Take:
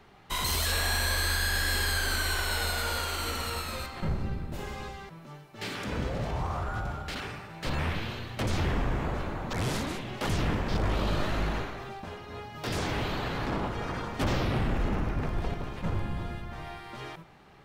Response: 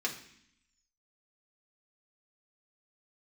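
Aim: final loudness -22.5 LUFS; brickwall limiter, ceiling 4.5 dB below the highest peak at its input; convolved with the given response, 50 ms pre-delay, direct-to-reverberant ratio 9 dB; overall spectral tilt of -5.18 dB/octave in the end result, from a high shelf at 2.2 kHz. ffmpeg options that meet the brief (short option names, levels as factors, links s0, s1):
-filter_complex "[0:a]highshelf=f=2200:g=-7.5,alimiter=level_in=1.12:limit=0.0631:level=0:latency=1,volume=0.891,asplit=2[s0][s1];[1:a]atrim=start_sample=2205,adelay=50[s2];[s1][s2]afir=irnorm=-1:irlink=0,volume=0.211[s3];[s0][s3]amix=inputs=2:normalize=0,volume=3.98"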